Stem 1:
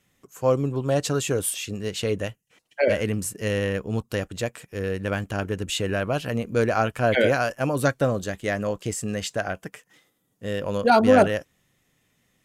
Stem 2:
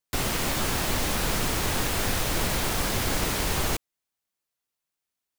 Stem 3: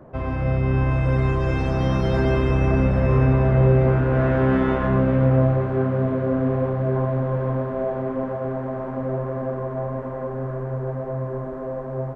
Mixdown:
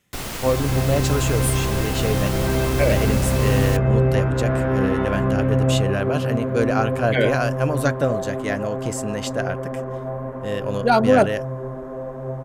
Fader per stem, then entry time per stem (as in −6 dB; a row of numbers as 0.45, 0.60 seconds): +0.5, −3.0, −1.5 decibels; 0.00, 0.00, 0.30 seconds